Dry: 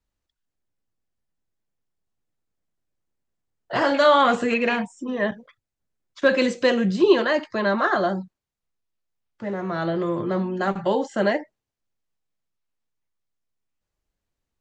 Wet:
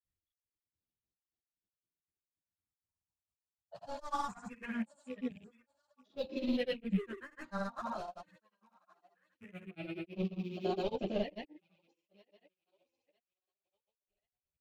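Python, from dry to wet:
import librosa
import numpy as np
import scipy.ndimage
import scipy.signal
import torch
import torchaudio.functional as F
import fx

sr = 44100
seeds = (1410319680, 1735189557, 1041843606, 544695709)

p1 = fx.rattle_buzz(x, sr, strikes_db=-38.0, level_db=-23.0)
p2 = fx.highpass(p1, sr, hz=130.0, slope=6)
p3 = fx.peak_eq(p2, sr, hz=1500.0, db=-7.0, octaves=2.5)
p4 = np.clip(p3, -10.0 ** (-21.0 / 20.0), 10.0 ** (-21.0 / 20.0))
p5 = fx.phaser_stages(p4, sr, stages=4, low_hz=340.0, high_hz=1700.0, hz=0.21, feedback_pct=30)
p6 = p5 + fx.echo_thinned(p5, sr, ms=949, feedback_pct=33, hz=460.0, wet_db=-24.0, dry=0)
p7 = fx.granulator(p6, sr, seeds[0], grain_ms=191.0, per_s=4.9, spray_ms=100.0, spread_st=0)
p8 = fx.tremolo_random(p7, sr, seeds[1], hz=3.5, depth_pct=55)
p9 = fx.granulator(p8, sr, seeds[2], grain_ms=100.0, per_s=20.0, spray_ms=100.0, spread_st=0)
y = fx.chorus_voices(p9, sr, voices=4, hz=0.64, base_ms=11, depth_ms=1.7, mix_pct=60)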